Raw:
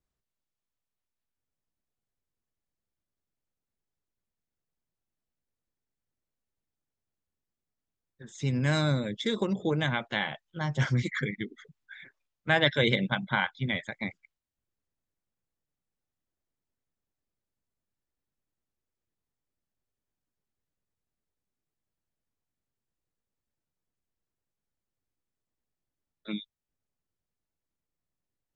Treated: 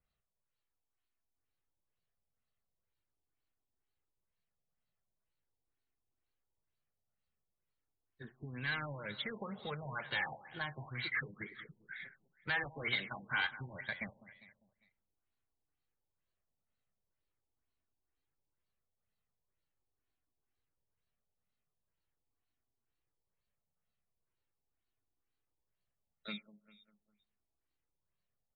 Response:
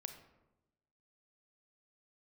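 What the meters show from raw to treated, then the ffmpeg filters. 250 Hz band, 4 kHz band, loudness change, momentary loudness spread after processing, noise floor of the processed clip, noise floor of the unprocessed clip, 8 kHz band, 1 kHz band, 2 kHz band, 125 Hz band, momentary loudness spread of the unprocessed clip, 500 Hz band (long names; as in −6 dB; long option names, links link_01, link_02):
−17.5 dB, −10.0 dB, −10.5 dB, 15 LU, below −85 dBFS, below −85 dBFS, below −25 dB, −9.5 dB, −6.5 dB, −17.5 dB, 15 LU, −16.0 dB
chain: -filter_complex "[0:a]bass=frequency=250:gain=6,treble=frequency=4000:gain=6,bandreject=frequency=3500:width=11,acrossover=split=930[link_01][link_02];[link_01]acompressor=threshold=-37dB:ratio=6[link_03];[link_03][link_02]amix=inputs=2:normalize=0,asoftclip=type=tanh:threshold=-26dB,asplit=2[link_04][link_05];[link_05]highpass=frequency=720:poles=1,volume=7dB,asoftclip=type=tanh:threshold=-26dB[link_06];[link_04][link_06]amix=inputs=2:normalize=0,lowpass=frequency=6600:poles=1,volume=-6dB,crystalizer=i=2:c=0,flanger=delay=1.5:depth=1.3:regen=-40:speed=0.42:shape=sinusoidal,aecho=1:1:200|400|600|800:0.168|0.0772|0.0355|0.0163,asplit=2[link_07][link_08];[1:a]atrim=start_sample=2205,asetrate=37485,aresample=44100,lowpass=2300[link_09];[link_08][link_09]afir=irnorm=-1:irlink=0,volume=-11.5dB[link_10];[link_07][link_10]amix=inputs=2:normalize=0,afftfilt=real='re*lt(b*sr/1024,980*pow(4700/980,0.5+0.5*sin(2*PI*2.1*pts/sr)))':imag='im*lt(b*sr/1024,980*pow(4700/980,0.5+0.5*sin(2*PI*2.1*pts/sr)))':win_size=1024:overlap=0.75"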